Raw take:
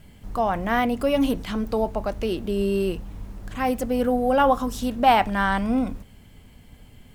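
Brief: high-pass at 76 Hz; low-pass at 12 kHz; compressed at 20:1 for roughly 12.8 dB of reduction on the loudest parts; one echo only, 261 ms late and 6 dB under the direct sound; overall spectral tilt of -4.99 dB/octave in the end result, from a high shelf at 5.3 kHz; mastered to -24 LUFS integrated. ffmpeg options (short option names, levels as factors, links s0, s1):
-af "highpass=76,lowpass=12000,highshelf=f=5300:g=7.5,acompressor=threshold=0.0631:ratio=20,aecho=1:1:261:0.501,volume=1.78"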